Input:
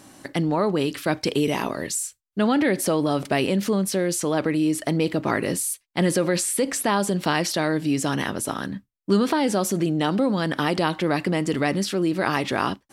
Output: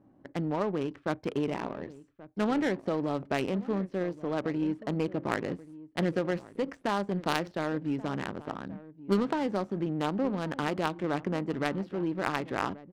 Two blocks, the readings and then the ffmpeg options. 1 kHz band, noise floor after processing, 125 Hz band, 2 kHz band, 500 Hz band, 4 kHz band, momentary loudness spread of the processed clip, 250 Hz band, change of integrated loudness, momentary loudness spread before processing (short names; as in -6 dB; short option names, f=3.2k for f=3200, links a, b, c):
-7.5 dB, -60 dBFS, -8.5 dB, -9.0 dB, -8.0 dB, -12.5 dB, 9 LU, -8.0 dB, -8.5 dB, 5 LU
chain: -af "aecho=1:1:1130:0.168,aeval=exprs='0.473*(cos(1*acos(clip(val(0)/0.473,-1,1)))-cos(1*PI/2))+0.0841*(cos(3*acos(clip(val(0)/0.473,-1,1)))-cos(3*PI/2))+0.015*(cos(6*acos(clip(val(0)/0.473,-1,1)))-cos(6*PI/2))+0.00841*(cos(8*acos(clip(val(0)/0.473,-1,1)))-cos(8*PI/2))':c=same,adynamicsmooth=sensitivity=2.5:basefreq=620,volume=-2.5dB"